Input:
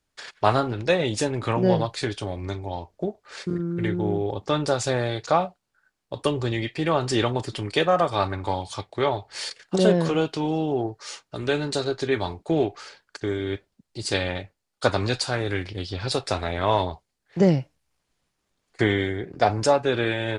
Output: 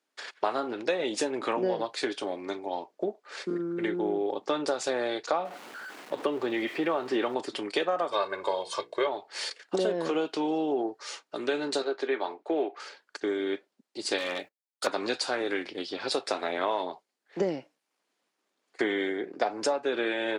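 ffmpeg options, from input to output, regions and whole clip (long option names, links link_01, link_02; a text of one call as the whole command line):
ffmpeg -i in.wav -filter_complex "[0:a]asettb=1/sr,asplit=3[link_01][link_02][link_03];[link_01]atrim=end=5.454[link_04];[link_02]atrim=start=5.45:end=7.35,asetpts=PTS-STARTPTS,afade=type=in:duration=0.004:curve=qsin,afade=type=out:start_time=1.896:duration=0.004:curve=qsin,aeval=exprs='val(0)+0.5*0.02*sgn(val(0))':channel_layout=same,acrossover=split=3200[link_05][link_06];[link_06]acompressor=threshold=-49dB:ratio=4:attack=1:release=60[link_07];[link_05][link_07]amix=inputs=2:normalize=0[link_08];[link_03]atrim=start=7.346[link_09];[link_04][link_08]acrossfade=duration=0.004:curve1=hsin:curve2=qsin[link_10];[link_10][link_09]acrossfade=duration=0.004:curve1=qsin:curve2=hsin,asettb=1/sr,asplit=3[link_11][link_12][link_13];[link_11]atrim=end=8.124[link_14];[link_12]atrim=start=8.12:end=9.07,asetpts=PTS-STARTPTS,afade=type=in:duration=0.004:curve=qsin,afade=type=out:start_time=0.946:duration=0.004:curve=qsin,bandreject=frequency=60:width_type=h:width=6,bandreject=frequency=120:width_type=h:width=6,bandreject=frequency=180:width_type=h:width=6,bandreject=frequency=240:width_type=h:width=6,bandreject=frequency=300:width_type=h:width=6,bandreject=frequency=360:width_type=h:width=6,bandreject=frequency=420:width_type=h:width=6,bandreject=frequency=480:width_type=h:width=6,aecho=1:1:1.9:0.97,atrim=end_sample=41895[link_15];[link_13]atrim=start=9.066[link_16];[link_14][link_15]acrossfade=duration=0.004:curve1=hsin:curve2=qsin[link_17];[link_17][link_16]acrossfade=duration=0.004:curve1=qsin:curve2=hsin,asettb=1/sr,asplit=3[link_18][link_19][link_20];[link_18]atrim=end=11.824[link_21];[link_19]atrim=start=11.82:end=12.8,asetpts=PTS-STARTPTS,afade=type=in:duration=0.004:curve=qsin,afade=type=out:start_time=0.976:duration=0.004:curve=qsin,highpass=140,bass=frequency=250:gain=-12,treble=frequency=4000:gain=-12[link_22];[link_20]atrim=start=12.796[link_23];[link_21][link_22]acrossfade=duration=0.004:curve1=hsin:curve2=qsin[link_24];[link_24][link_23]acrossfade=duration=0.004:curve1=qsin:curve2=hsin,asettb=1/sr,asplit=3[link_25][link_26][link_27];[link_25]atrim=end=14.184[link_28];[link_26]atrim=start=14.18:end=14.87,asetpts=PTS-STARTPTS,afade=type=in:duration=0.004:curve=qsin,afade=type=out:start_time=0.686:duration=0.004:curve=qsin,aemphasis=mode=production:type=50fm,agate=range=-22dB:threshold=-47dB:ratio=16:release=100:detection=peak,volume=23dB,asoftclip=hard,volume=-23dB[link_29];[link_27]atrim=start=14.866[link_30];[link_28][link_29]acrossfade=duration=0.004:curve1=hsin:curve2=qsin[link_31];[link_31][link_30]acrossfade=duration=0.004:curve1=qsin:curve2=hsin,highpass=frequency=260:width=0.5412,highpass=frequency=260:width=1.3066,highshelf=frequency=4900:gain=-5.5,acompressor=threshold=-24dB:ratio=6" out.wav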